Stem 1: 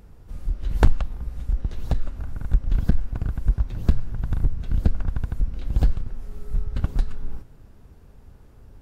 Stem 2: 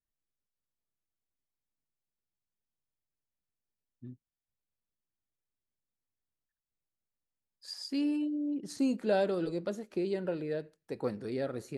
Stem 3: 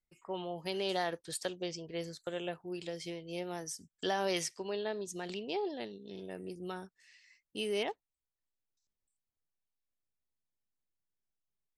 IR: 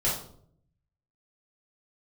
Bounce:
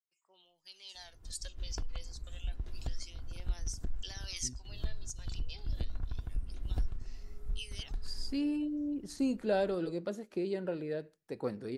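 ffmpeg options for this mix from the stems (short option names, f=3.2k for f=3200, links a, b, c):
-filter_complex "[0:a]aecho=1:1:2.9:0.32,acontrast=81,adelay=950,volume=-20dB[a];[1:a]adelay=400,volume=-2dB[b];[2:a]dynaudnorm=f=170:g=13:m=8.5dB,aphaser=in_gain=1:out_gain=1:delay=2:decay=0.54:speed=0.28:type=sinusoidal,bandpass=f=6.1k:t=q:w=1.8:csg=0,volume=-6.5dB,asplit=2[c][d];[d]apad=whole_len=430651[e];[a][e]sidechaincompress=threshold=-53dB:ratio=3:attack=36:release=247[f];[f][b][c]amix=inputs=3:normalize=0"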